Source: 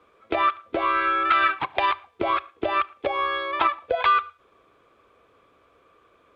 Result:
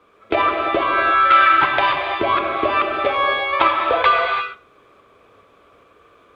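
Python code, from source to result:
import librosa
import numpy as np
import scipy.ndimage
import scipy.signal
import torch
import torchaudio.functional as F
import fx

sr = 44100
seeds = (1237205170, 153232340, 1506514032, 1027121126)

y = fx.tremolo_shape(x, sr, shape='saw_up', hz=2.4, depth_pct=35)
y = fx.rev_gated(y, sr, seeds[0], gate_ms=370, shape='flat', drr_db=0.5)
y = y * librosa.db_to_amplitude(6.5)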